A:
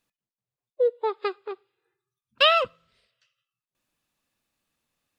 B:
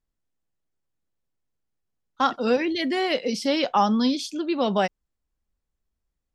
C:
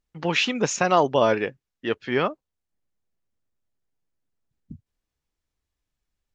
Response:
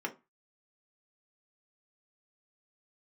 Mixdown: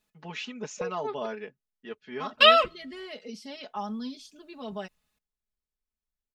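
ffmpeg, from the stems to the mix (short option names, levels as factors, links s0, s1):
-filter_complex "[0:a]asubboost=boost=4.5:cutoff=120,volume=0.841,asplit=3[s0][s1][s2];[s0]atrim=end=1.26,asetpts=PTS-STARTPTS,afade=t=out:st=1.256:d=0.004:c=hsin[s3];[s1]atrim=start=1.26:end=2.21,asetpts=PTS-STARTPTS,volume=0[s4];[s2]atrim=start=2.21,asetpts=PTS-STARTPTS,afade=t=in:d=0.004:c=hsin[s5];[s3][s4][s5]concat=n=3:v=0:a=1[s6];[1:a]volume=0.119[s7];[2:a]volume=0.133,asplit=2[s8][s9];[s9]apad=whole_len=228527[s10];[s6][s10]sidechaincompress=threshold=0.00282:ratio=5:attack=23:release=103[s11];[s11][s7][s8]amix=inputs=3:normalize=0,aecho=1:1:4.7:0.97"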